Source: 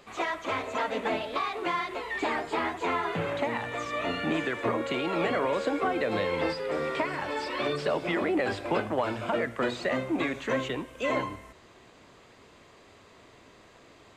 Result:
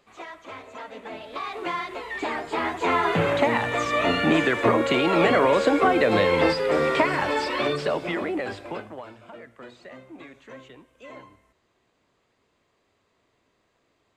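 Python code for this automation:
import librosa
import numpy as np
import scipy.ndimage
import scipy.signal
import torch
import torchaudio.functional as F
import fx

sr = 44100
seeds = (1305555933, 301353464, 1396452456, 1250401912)

y = fx.gain(x, sr, db=fx.line((1.08, -9.0), (1.55, 0.5), (2.4, 0.5), (3.1, 8.5), (7.24, 8.5), (8.61, -3.5), (9.21, -15.0)))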